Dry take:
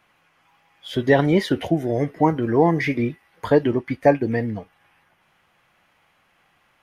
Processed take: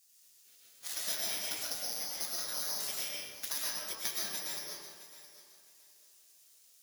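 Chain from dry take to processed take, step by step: sample sorter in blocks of 8 samples; spectral gate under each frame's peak -20 dB weak; HPF 85 Hz 12 dB/oct; high shelf 4100 Hz +11.5 dB; compressor 6:1, threshold -34 dBFS, peak gain reduction 20.5 dB; thinning echo 0.666 s, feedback 24%, high-pass 160 Hz, level -15 dB; digital reverb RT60 1.3 s, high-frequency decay 0.65×, pre-delay 80 ms, DRR -4.5 dB; gain -2 dB

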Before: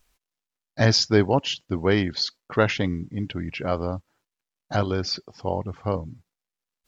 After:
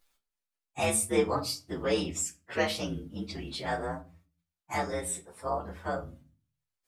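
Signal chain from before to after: inharmonic rescaling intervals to 119%; low shelf 290 Hz -11 dB; in parallel at +0.5 dB: compressor, threshold -36 dBFS, peak gain reduction 16.5 dB; on the sum: notches 60/120/180 Hz; reverb RT60 0.35 s, pre-delay 6 ms, DRR 6 dB; gain -5 dB

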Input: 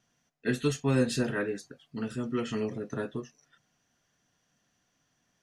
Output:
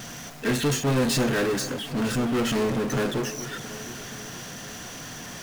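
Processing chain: power-law curve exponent 0.35; echo with dull and thin repeats by turns 0.238 s, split 2400 Hz, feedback 78%, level -13 dB; gain -2 dB

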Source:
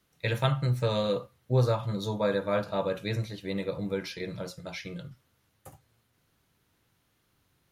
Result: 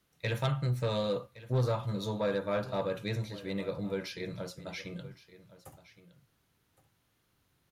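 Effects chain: soft clip -19.5 dBFS, distortion -17 dB; on a send: echo 1.116 s -17.5 dB; on the sum: gain -2.5 dB

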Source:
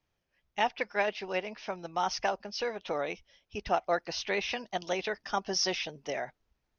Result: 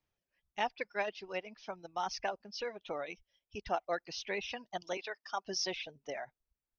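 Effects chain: reverb removal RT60 1.8 s; 4.97–5.45 HPF 490 Hz 12 dB/oct; gain -5.5 dB

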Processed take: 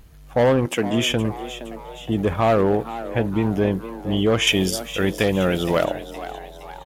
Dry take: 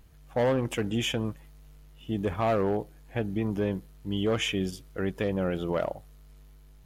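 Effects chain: 0.65–1.08 HPF 230 Hz -> 94 Hz 12 dB/oct; 4.47–5.85 high shelf 2600 Hz +12 dB; frequency-shifting echo 0.467 s, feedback 51%, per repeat +120 Hz, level -13.5 dB; gain +8 dB

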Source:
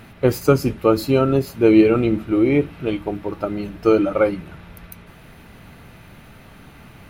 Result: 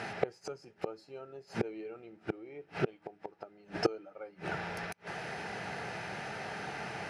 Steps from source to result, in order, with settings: low shelf 170 Hz -8.5 dB; notch 1100 Hz, Q 9.1; flipped gate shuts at -20 dBFS, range -35 dB; speaker cabinet 130–8400 Hz, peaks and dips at 260 Hz -10 dB, 430 Hz +5 dB, 770 Hz +9 dB, 1700 Hz +6 dB, 3600 Hz -4 dB, 5200 Hz +7 dB; gain +5 dB

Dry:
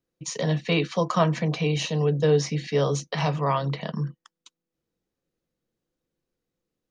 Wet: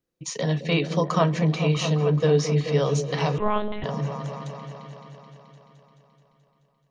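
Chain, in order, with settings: repeats that get brighter 0.215 s, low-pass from 400 Hz, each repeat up 1 oct, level -6 dB; 3.38–3.84 monotone LPC vocoder at 8 kHz 210 Hz

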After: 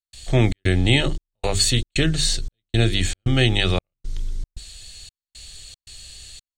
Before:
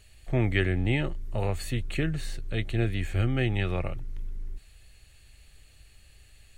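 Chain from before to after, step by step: band shelf 5300 Hz +14.5 dB; notches 50/100/150/200/250/300/350/400 Hz; step gate ".xxx.xxxx." 115 bpm -60 dB; gain +8.5 dB

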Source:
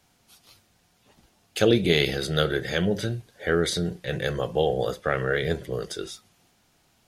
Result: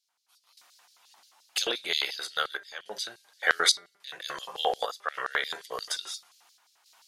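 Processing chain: random-step tremolo, depth 90%; de-hum 199.7 Hz, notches 12; LFO high-pass square 5.7 Hz 1000–4400 Hz; gain +5 dB

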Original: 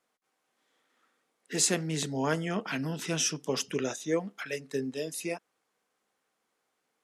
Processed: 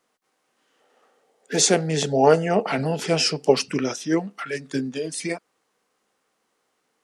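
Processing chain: formant shift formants -2 st; spectral gain 0.81–3.53, 380–890 Hz +10 dB; gain +7 dB

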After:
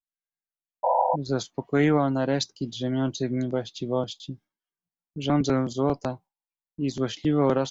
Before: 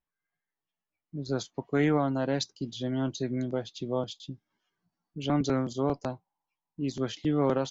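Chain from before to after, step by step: gate with hold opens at -49 dBFS; painted sound noise, 0.83–1.16, 500–1000 Hz -26 dBFS; gain +4 dB

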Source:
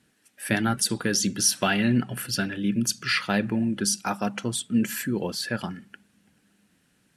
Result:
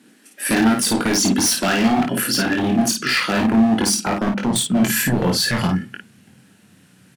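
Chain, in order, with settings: 4.04–4.56 LPF 1000 Hz 6 dB/oct; in parallel at -1.5 dB: negative-ratio compressor -29 dBFS, ratio -0.5; on the sum: high-pass sweep 250 Hz -> 110 Hz, 4.18–4.92; wavefolder -15.5 dBFS; on a send: early reflections 22 ms -4.5 dB, 54 ms -4 dB; on the sum: gain +2 dB

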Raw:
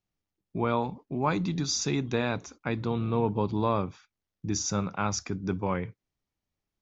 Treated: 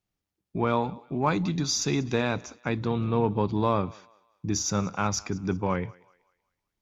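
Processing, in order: thinning echo 0.189 s, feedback 40%, high-pass 520 Hz, level -22 dB; added harmonics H 6 -44 dB, 8 -36 dB, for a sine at -12.5 dBFS; gain +2 dB

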